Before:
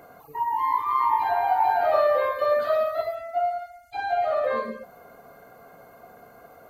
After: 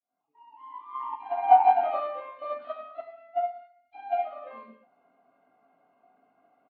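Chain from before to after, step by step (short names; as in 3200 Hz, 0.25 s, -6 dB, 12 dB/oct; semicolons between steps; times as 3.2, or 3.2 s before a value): opening faded in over 1.38 s; notch 1800 Hz, Q 20; in parallel at -10 dB: crossover distortion -39.5 dBFS; on the sum: speaker cabinet 220–3200 Hz, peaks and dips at 270 Hz +10 dB, 480 Hz -10 dB, 760 Hz +5 dB, 1600 Hz -5 dB, 2800 Hz +6 dB; on a send: early reflections 23 ms -5.5 dB, 39 ms -10.5 dB; on the sum: upward expander 2.5:1, over -23 dBFS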